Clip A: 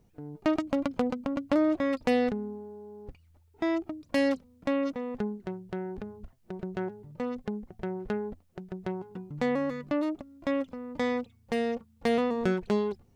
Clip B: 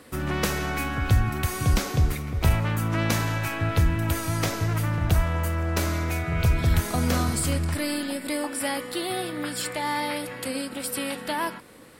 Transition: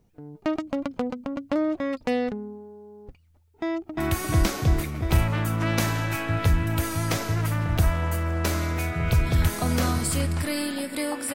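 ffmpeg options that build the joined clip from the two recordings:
-filter_complex "[0:a]apad=whole_dur=11.34,atrim=end=11.34,atrim=end=3.982[s0];[1:a]atrim=start=1.298:end=8.66[s1];[s0][s1]acrossfade=d=0.004:c1=hsin:c2=hsin,asplit=2[s2][s3];[s3]afade=t=in:st=3.52:d=0.01,afade=t=out:st=3.98:d=0.01,aecho=0:1:350|700|1050|1400|1750|2100|2450|2800|3150|3500|3850|4200:0.841395|0.673116|0.538493|0.430794|0.344635|0.275708|0.220567|0.176453|0.141163|0.11293|0.0903441|0.0722753[s4];[s2][s4]amix=inputs=2:normalize=0"

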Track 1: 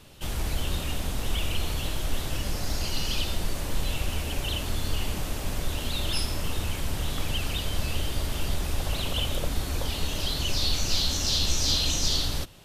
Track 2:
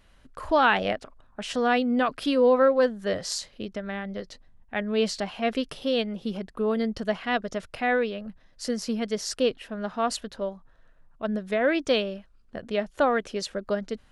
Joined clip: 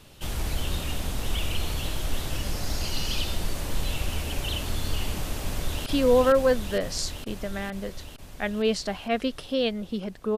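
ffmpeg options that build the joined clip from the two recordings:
-filter_complex "[0:a]apad=whole_dur=10.37,atrim=end=10.37,atrim=end=5.862[s0];[1:a]atrim=start=2.188:end=6.7[s1];[s0][s1]acrossfade=d=0.004:c1=hsin:c2=hsin,asplit=2[s2][s3];[s3]afade=t=in:st=5.42:d=0.01,afade=t=out:st=5.86:d=0.01,aecho=0:1:460|920|1380|1840|2300|2760|3220|3680|4140|4600|5060|5520:0.841395|0.631046|0.473285|0.354964|0.266223|0.199667|0.14975|0.112313|0.0842345|0.0631759|0.0473819|0.0355364[s4];[s2][s4]amix=inputs=2:normalize=0"

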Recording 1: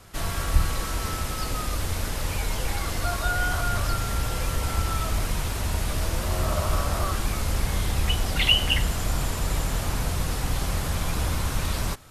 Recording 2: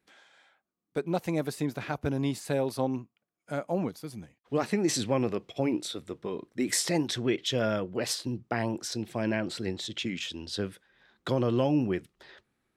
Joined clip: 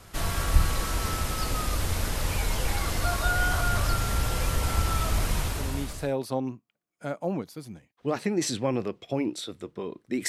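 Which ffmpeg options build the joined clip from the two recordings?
-filter_complex "[0:a]apad=whole_dur=10.28,atrim=end=10.28,atrim=end=6.14,asetpts=PTS-STARTPTS[s0];[1:a]atrim=start=1.85:end=6.75,asetpts=PTS-STARTPTS[s1];[s0][s1]acrossfade=d=0.76:c1=tri:c2=tri"

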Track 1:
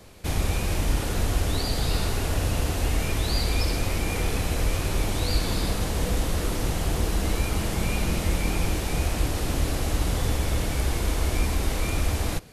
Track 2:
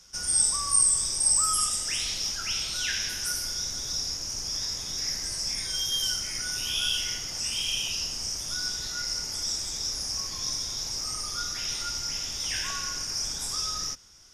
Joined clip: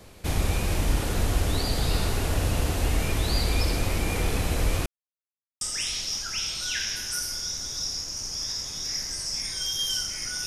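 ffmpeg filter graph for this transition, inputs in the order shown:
-filter_complex "[0:a]apad=whole_dur=10.46,atrim=end=10.46,asplit=2[s0][s1];[s0]atrim=end=4.86,asetpts=PTS-STARTPTS,afade=t=out:st=4.856:d=0.004:c=hsin[s2];[s1]atrim=start=4.86:end=5.61,asetpts=PTS-STARTPTS,volume=0[s3];[1:a]atrim=start=1.74:end=6.59,asetpts=PTS-STARTPTS,afade=t=in:d=0.004:c=hsin[s4];[s2][s3][s4]concat=n=3:v=0:a=1"

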